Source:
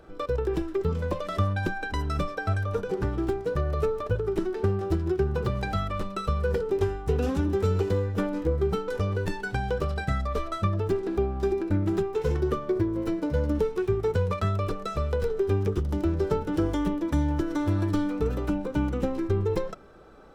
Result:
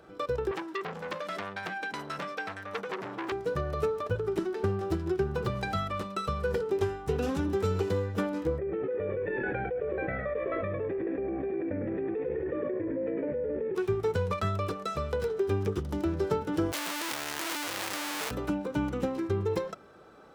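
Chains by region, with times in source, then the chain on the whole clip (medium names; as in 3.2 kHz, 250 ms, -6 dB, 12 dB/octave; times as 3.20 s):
0.51–3.32 s: high-pass 150 Hz 24 dB/octave + transformer saturation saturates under 2.5 kHz
8.58–13.75 s: cascade formant filter e + frequency-shifting echo 103 ms, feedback 33%, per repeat -59 Hz, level -5 dB + level flattener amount 100%
16.72–18.31 s: one-bit comparator + high-pass 1.2 kHz 6 dB/octave
whole clip: high-pass 110 Hz 12 dB/octave; peaking EQ 270 Hz -3 dB 2.7 oct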